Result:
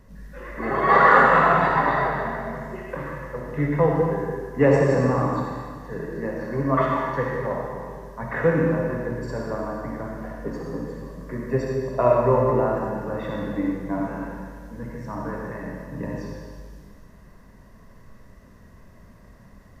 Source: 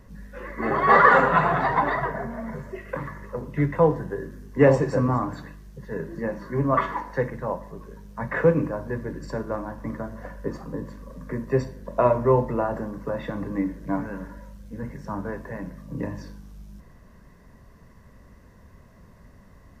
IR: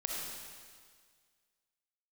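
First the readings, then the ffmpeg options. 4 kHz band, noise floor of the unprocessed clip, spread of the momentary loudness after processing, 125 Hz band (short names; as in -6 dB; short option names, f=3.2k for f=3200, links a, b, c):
n/a, -52 dBFS, 17 LU, +1.5 dB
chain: -filter_complex "[1:a]atrim=start_sample=2205[a];[0:a][a]afir=irnorm=-1:irlink=0,volume=-1dB"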